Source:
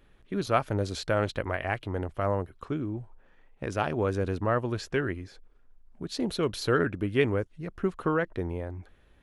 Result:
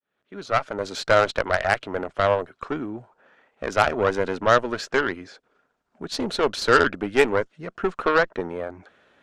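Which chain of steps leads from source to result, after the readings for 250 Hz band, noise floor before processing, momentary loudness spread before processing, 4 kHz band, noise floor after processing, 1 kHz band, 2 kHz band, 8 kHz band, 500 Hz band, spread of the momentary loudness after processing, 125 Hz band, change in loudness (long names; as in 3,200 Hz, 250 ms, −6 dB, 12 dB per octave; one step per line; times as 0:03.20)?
+1.0 dB, −60 dBFS, 11 LU, +8.5 dB, −75 dBFS, +9.5 dB, +10.5 dB, +6.5 dB, +7.0 dB, 15 LU, −4.0 dB, +7.0 dB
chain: fade in at the beginning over 1.20 s
loudspeaker in its box 250–7,900 Hz, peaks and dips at 330 Hz −4 dB, 640 Hz +4 dB, 1,400 Hz +6 dB
harmonic generator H 8 −20 dB, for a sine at −9 dBFS
level +7 dB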